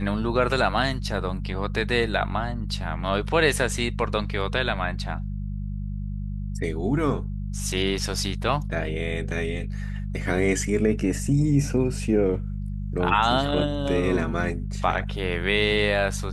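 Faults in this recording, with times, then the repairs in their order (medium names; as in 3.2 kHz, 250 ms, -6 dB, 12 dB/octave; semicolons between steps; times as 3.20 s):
hum 50 Hz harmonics 4 -30 dBFS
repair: de-hum 50 Hz, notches 4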